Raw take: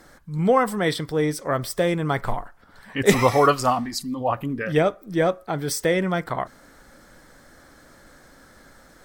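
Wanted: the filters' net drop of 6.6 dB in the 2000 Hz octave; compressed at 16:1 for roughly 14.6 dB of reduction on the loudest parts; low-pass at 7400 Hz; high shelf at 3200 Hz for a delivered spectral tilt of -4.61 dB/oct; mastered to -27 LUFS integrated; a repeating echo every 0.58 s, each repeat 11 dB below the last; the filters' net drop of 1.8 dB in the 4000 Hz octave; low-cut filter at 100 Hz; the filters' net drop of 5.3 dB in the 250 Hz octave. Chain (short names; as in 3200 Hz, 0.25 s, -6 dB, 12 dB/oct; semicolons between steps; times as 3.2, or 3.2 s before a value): HPF 100 Hz; LPF 7400 Hz; bell 250 Hz -7.5 dB; bell 2000 Hz -9 dB; high shelf 3200 Hz +6 dB; bell 4000 Hz -4 dB; compressor 16:1, threshold -29 dBFS; feedback echo 0.58 s, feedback 28%, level -11 dB; gain +7.5 dB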